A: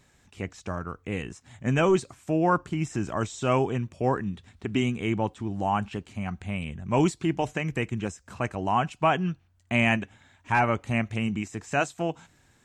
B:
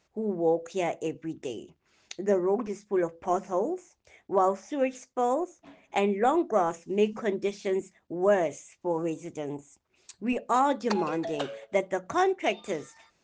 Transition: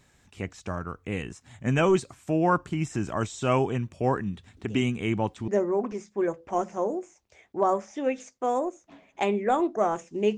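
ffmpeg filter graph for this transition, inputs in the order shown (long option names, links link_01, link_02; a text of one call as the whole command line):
ffmpeg -i cue0.wav -i cue1.wav -filter_complex "[1:a]asplit=2[link_01][link_02];[0:a]apad=whole_dur=10.37,atrim=end=10.37,atrim=end=5.482[link_03];[link_02]atrim=start=2.228:end=7.12[link_04];[link_01]atrim=start=1.32:end=2.23,asetpts=PTS-STARTPTS,volume=-13.5dB,afade=type=in:duration=0.004:curve=hsin,afade=type=out:start_time=0.906:duration=0.004:curve=hsin,adelay=201537S[link_05];[link_03][link_04]acrossfade=duration=0.004:curve1=hsin:curve2=hsin[link_06];[link_06][link_05]amix=inputs=2:normalize=0" out.wav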